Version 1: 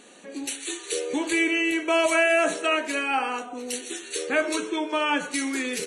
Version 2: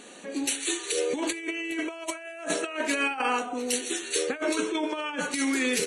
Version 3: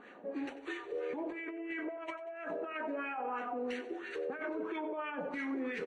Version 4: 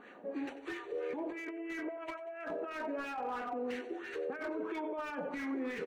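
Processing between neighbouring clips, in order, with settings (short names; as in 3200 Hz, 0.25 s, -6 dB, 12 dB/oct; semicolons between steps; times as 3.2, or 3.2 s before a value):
negative-ratio compressor -28 dBFS, ratio -0.5
LFO low-pass sine 3 Hz 610–2000 Hz; limiter -23 dBFS, peak gain reduction 10 dB; feedback echo 93 ms, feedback 50%, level -15.5 dB; gain -7.5 dB
slew limiter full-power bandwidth 18 Hz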